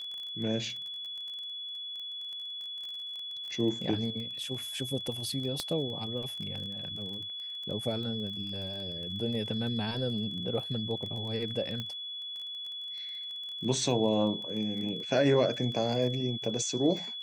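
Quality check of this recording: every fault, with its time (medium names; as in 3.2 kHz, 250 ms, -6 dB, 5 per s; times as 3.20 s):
crackle 22 per s -38 dBFS
whine 3.4 kHz -37 dBFS
5.60 s: pop -19 dBFS
11.80 s: pop -23 dBFS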